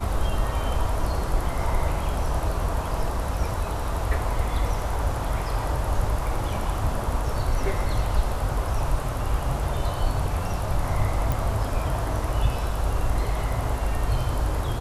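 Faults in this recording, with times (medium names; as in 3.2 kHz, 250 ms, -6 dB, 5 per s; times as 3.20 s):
11.32 s: pop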